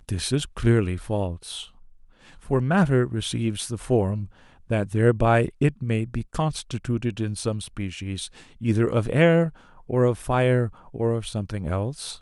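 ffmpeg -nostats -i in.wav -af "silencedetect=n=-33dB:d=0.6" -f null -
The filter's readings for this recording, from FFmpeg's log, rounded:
silence_start: 1.64
silence_end: 2.49 | silence_duration: 0.85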